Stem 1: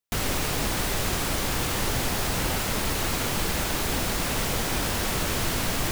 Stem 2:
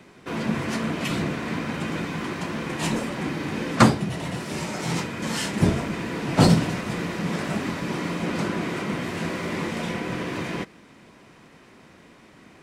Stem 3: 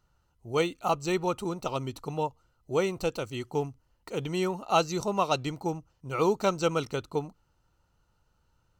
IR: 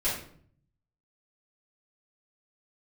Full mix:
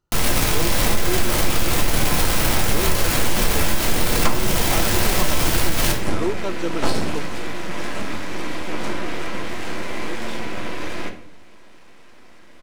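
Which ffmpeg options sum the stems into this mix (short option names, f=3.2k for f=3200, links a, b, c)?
-filter_complex "[0:a]acrusher=bits=5:dc=4:mix=0:aa=0.000001,volume=1.5dB,asplit=2[a][b];[b]volume=-6.5dB[c];[1:a]equalizer=f=150:w=1.5:g=-12.5,aeval=exprs='max(val(0),0)':c=same,adelay=450,volume=2.5dB,asplit=2[d][e];[e]volume=-10.5dB[f];[2:a]equalizer=f=340:t=o:w=0.44:g=11.5,volume=-5.5dB[g];[3:a]atrim=start_sample=2205[h];[c][f]amix=inputs=2:normalize=0[i];[i][h]afir=irnorm=-1:irlink=0[j];[a][d][g][j]amix=inputs=4:normalize=0,acompressor=threshold=-11dB:ratio=6"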